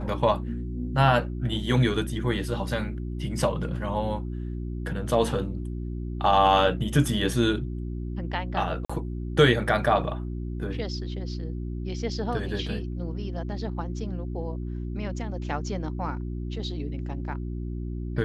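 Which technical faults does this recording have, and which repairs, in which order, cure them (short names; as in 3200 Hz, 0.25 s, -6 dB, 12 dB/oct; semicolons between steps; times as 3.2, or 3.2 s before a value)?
hum 60 Hz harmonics 6 -32 dBFS
8.85–8.89 gap 45 ms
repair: de-hum 60 Hz, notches 6; interpolate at 8.85, 45 ms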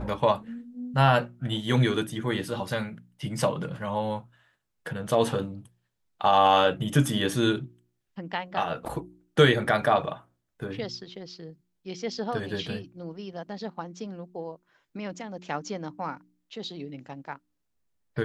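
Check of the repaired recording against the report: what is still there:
none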